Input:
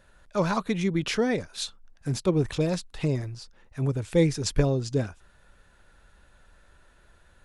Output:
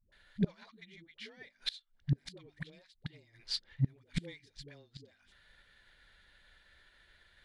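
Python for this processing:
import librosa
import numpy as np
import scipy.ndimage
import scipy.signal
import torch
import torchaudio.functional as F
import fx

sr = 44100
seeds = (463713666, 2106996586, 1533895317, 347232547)

y = fx.notch(x, sr, hz=2600.0, q=7.2)
y = fx.cheby_harmonics(y, sr, harmonics=(7,), levels_db=(-35,), full_scale_db=-9.5)
y = fx.band_shelf(y, sr, hz=2800.0, db=14.5, octaves=1.7)
y = fx.hum_notches(y, sr, base_hz=50, count=6)
y = fx.dispersion(y, sr, late='highs', ms=123.0, hz=340.0)
y = fx.gate_flip(y, sr, shuts_db=-22.0, range_db=-25)
y = fx.upward_expand(y, sr, threshold_db=-56.0, expansion=1.5)
y = F.gain(torch.from_numpy(y), 4.0).numpy()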